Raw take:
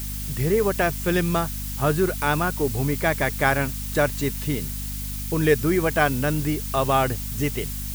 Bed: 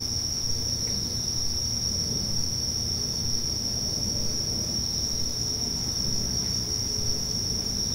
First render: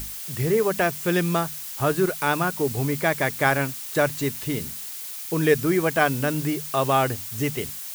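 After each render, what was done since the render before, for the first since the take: hum notches 50/100/150/200/250 Hz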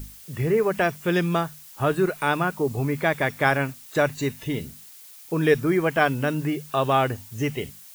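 noise print and reduce 11 dB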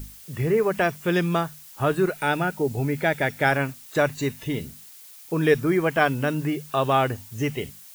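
2.12–3.52 s: Butterworth band-stop 1.1 kHz, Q 4.1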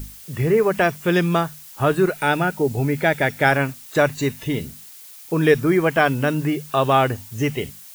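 trim +4 dB; peak limiter -3 dBFS, peak gain reduction 2 dB

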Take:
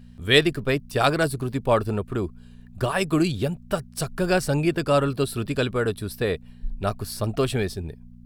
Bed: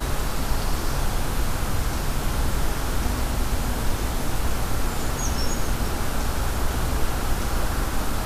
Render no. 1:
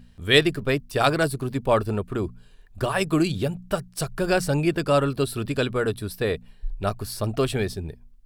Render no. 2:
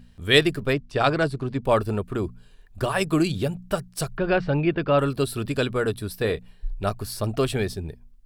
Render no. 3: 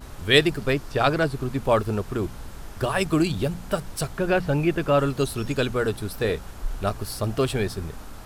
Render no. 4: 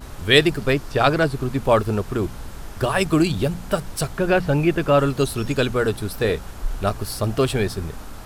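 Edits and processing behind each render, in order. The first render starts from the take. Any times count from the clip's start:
de-hum 60 Hz, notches 4
0.73–1.65 s: distance through air 100 m; 4.17–4.99 s: low-pass 3.3 kHz 24 dB/octave; 6.17–6.85 s: doubling 27 ms -12 dB
add bed -15.5 dB
trim +3.5 dB; peak limiter -2 dBFS, peak gain reduction 1.5 dB

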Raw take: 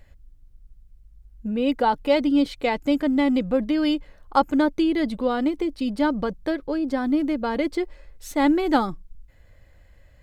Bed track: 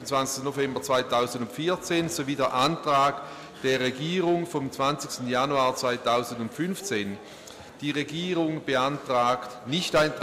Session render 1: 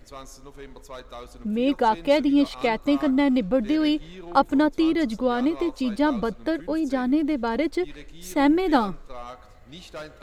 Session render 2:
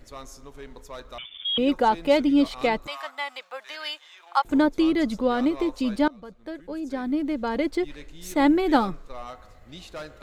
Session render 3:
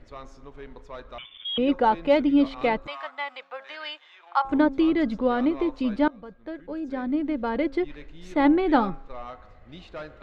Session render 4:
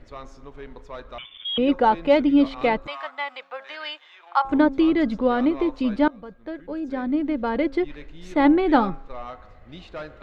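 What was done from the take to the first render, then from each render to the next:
add bed track -16 dB
1.18–1.58 s: frequency inversion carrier 3.5 kHz; 2.87–4.45 s: high-pass 840 Hz 24 dB/octave; 6.08–7.83 s: fade in, from -24 dB
low-pass 2.9 kHz 12 dB/octave; de-hum 270.2 Hz, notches 6
trim +2.5 dB

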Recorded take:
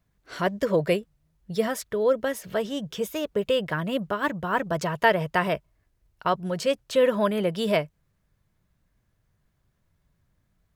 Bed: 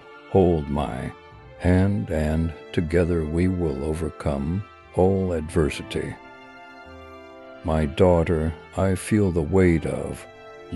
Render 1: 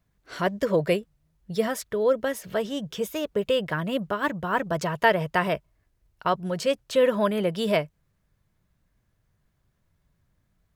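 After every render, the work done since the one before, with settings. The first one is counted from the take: no audible change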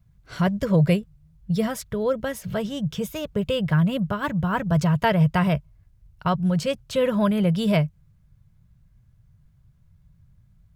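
resonant low shelf 210 Hz +13 dB, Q 1.5; band-stop 1.8 kHz, Q 17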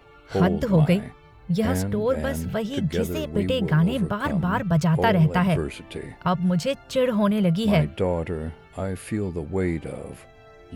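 add bed -7 dB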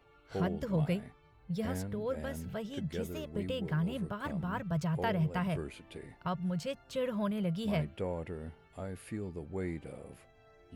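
trim -12.5 dB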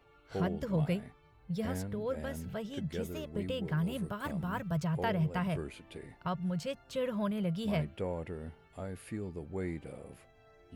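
3.77–4.76 s: treble shelf 7.4 kHz +10.5 dB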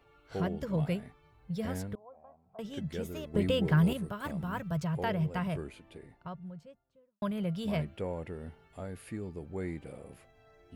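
1.95–2.59 s: cascade formant filter a; 3.34–3.93 s: gain +7.5 dB; 5.30–7.22 s: studio fade out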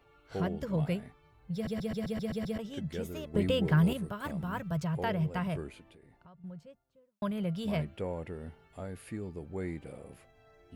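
1.54 s: stutter in place 0.13 s, 8 plays; 5.82–6.44 s: compression 4:1, threshold -55 dBFS

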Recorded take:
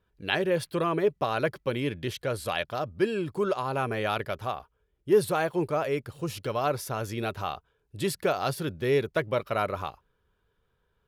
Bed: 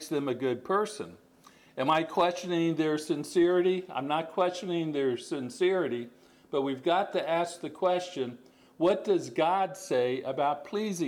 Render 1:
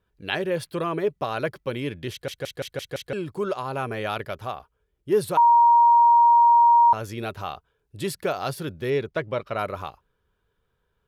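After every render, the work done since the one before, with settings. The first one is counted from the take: 2.11 s: stutter in place 0.17 s, 6 plays; 5.37–6.93 s: bleep 942 Hz -12 dBFS; 8.90–9.59 s: distance through air 57 m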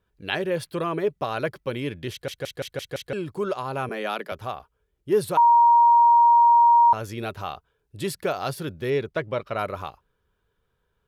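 3.89–4.32 s: steep high-pass 160 Hz 96 dB/octave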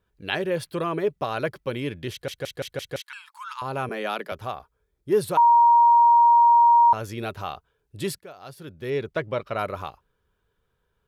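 2.99–3.62 s: brick-wall FIR high-pass 840 Hz; 4.54–5.13 s: band-stop 2.9 kHz, Q 6.4; 8.19–9.09 s: fade in quadratic, from -17.5 dB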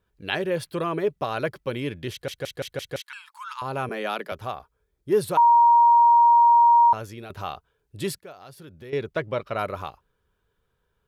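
6.85–7.30 s: fade out, to -11.5 dB; 8.34–8.93 s: compression 3:1, threshold -41 dBFS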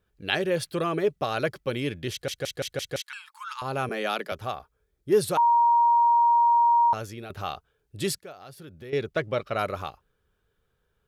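band-stop 980 Hz, Q 9.4; dynamic bell 6.3 kHz, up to +6 dB, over -47 dBFS, Q 0.76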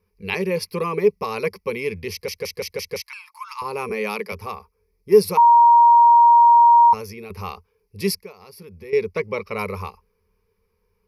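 rippled EQ curve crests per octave 0.85, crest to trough 18 dB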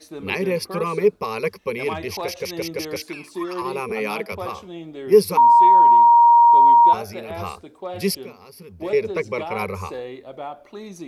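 add bed -5 dB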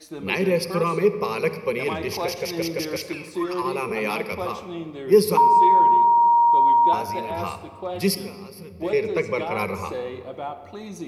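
simulated room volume 3500 m³, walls mixed, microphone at 0.8 m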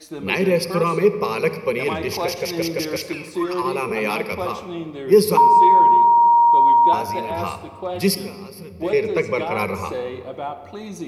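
trim +3 dB; peak limiter -3 dBFS, peak gain reduction 1.5 dB

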